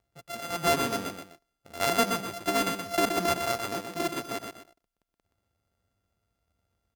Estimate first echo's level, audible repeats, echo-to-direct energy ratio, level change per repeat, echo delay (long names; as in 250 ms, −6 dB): −6.0 dB, 2, −5.5 dB, −9.5 dB, 124 ms